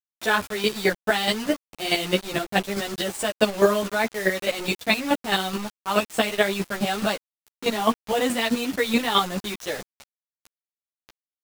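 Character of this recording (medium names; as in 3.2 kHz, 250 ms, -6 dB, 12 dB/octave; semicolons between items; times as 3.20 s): chopped level 4.7 Hz, depth 65%, duty 15%; a quantiser's noise floor 6-bit, dither none; a shimmering, thickened sound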